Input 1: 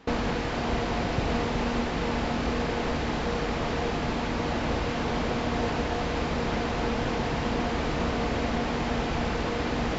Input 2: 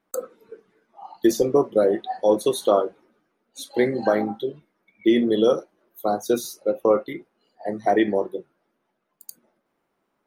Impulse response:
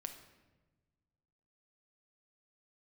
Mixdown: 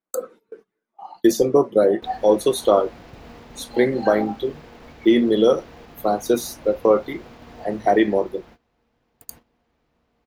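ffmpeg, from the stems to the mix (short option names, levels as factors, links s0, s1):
-filter_complex "[0:a]acrusher=bits=6:mode=log:mix=0:aa=0.000001,adelay=1950,volume=0.168,afade=t=out:st=7.99:d=0.56:silence=0.446684[s0];[1:a]volume=1.33[s1];[s0][s1]amix=inputs=2:normalize=0,agate=range=0.112:threshold=0.00631:ratio=16:detection=peak"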